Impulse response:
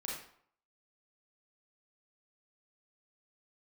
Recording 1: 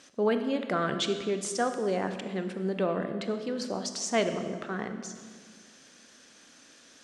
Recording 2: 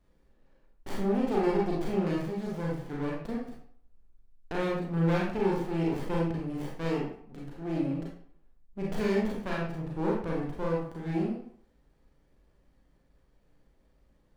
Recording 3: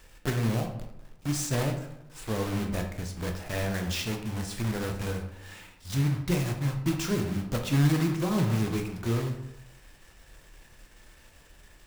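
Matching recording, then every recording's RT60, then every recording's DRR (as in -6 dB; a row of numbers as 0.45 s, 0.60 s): 2; 1.8 s, 0.60 s, 0.80 s; 7.5 dB, -4.5 dB, 3.0 dB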